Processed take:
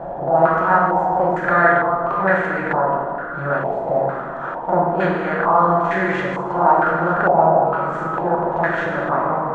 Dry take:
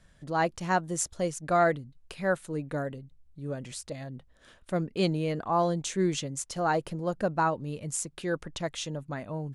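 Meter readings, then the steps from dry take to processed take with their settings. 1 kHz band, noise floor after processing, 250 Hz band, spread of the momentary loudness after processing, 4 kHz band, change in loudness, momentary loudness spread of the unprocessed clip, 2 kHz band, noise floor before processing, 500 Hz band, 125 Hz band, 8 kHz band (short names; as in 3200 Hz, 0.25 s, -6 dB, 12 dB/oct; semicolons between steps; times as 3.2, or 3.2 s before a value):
+15.5 dB, -28 dBFS, +8.0 dB, 8 LU, n/a, +12.5 dB, 11 LU, +15.5 dB, -61 dBFS, +12.5 dB, +6.5 dB, under -20 dB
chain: per-bin compression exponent 0.4; reverb removal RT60 1.7 s; on a send: reverse echo 42 ms -6.5 dB; on the sum: plate-style reverb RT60 2.7 s, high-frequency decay 0.65×, DRR -3 dB; stepped low-pass 2.2 Hz 770–1900 Hz; gain -1.5 dB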